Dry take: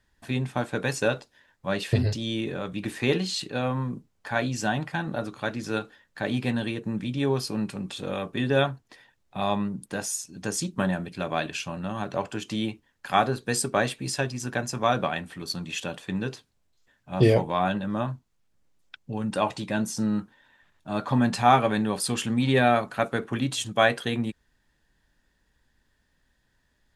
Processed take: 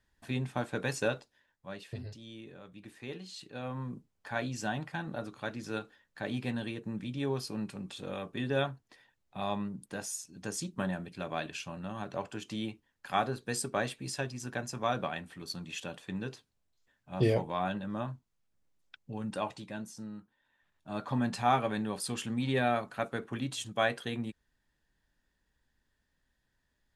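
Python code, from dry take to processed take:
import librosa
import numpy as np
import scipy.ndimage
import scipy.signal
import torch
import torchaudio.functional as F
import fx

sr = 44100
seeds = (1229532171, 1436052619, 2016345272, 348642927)

y = fx.gain(x, sr, db=fx.line((1.05, -6.0), (1.92, -18.5), (3.19, -18.5), (3.92, -8.0), (19.29, -8.0), (20.2, -19.0), (20.9, -8.5)))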